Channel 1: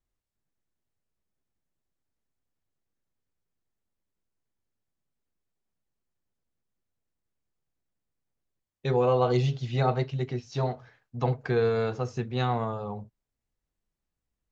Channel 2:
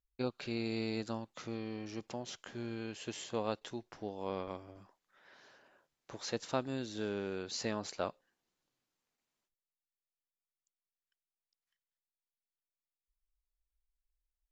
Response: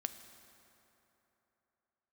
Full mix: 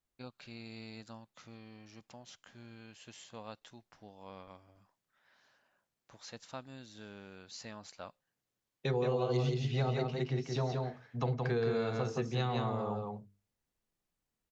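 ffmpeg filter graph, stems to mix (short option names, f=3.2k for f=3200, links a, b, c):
-filter_complex "[0:a]highpass=110,bandreject=f=50:t=h:w=6,bandreject=f=100:t=h:w=6,bandreject=f=150:t=h:w=6,bandreject=f=200:t=h:w=6,bandreject=f=250:t=h:w=6,bandreject=f=300:t=h:w=6,bandreject=f=350:t=h:w=6,bandreject=f=400:t=h:w=6,bandreject=f=450:t=h:w=6,acrossover=split=420|3000[a][b][c];[b]acompressor=threshold=-33dB:ratio=6[d];[a][d][c]amix=inputs=3:normalize=0,volume=0dB,asplit=2[e][f];[f]volume=-4dB[g];[1:a]equalizer=f=380:w=1.5:g=-9.5,volume=-7.5dB[h];[g]aecho=0:1:171:1[i];[e][h][i]amix=inputs=3:normalize=0,acompressor=threshold=-32dB:ratio=2"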